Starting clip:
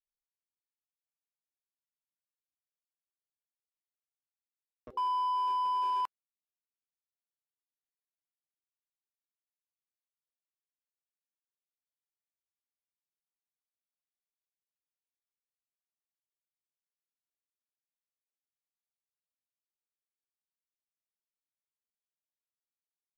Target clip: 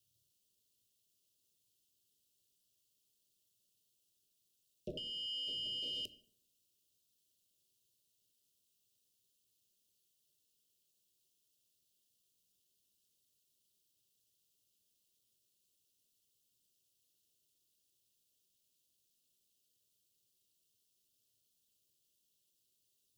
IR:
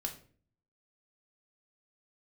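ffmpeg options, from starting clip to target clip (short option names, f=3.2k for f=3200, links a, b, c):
-filter_complex "[0:a]asoftclip=type=tanh:threshold=-31.5dB,asplit=2[a][b];[1:a]atrim=start_sample=2205,asetrate=48510,aresample=44100,lowshelf=f=150:g=8[c];[b][c]afir=irnorm=-1:irlink=0,volume=-4dB[d];[a][d]amix=inputs=2:normalize=0,acrossover=split=290[e][f];[f]acompressor=threshold=-39dB:ratio=6[g];[e][g]amix=inputs=2:normalize=0,asuperstop=centerf=1200:order=20:qfactor=0.53,equalizer=f=400:t=o:w=0.23:g=-9,aeval=exprs='val(0)*sin(2*PI*110*n/s)':c=same,alimiter=level_in=23dB:limit=-24dB:level=0:latency=1:release=345,volume=-23dB,lowshelf=f=180:g=-7,volume=17dB"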